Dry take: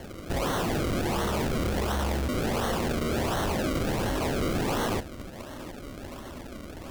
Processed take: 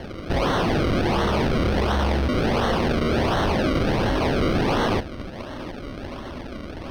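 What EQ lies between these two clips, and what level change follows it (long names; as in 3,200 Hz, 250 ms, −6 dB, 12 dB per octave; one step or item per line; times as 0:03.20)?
Savitzky-Golay smoothing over 15 samples
+6.5 dB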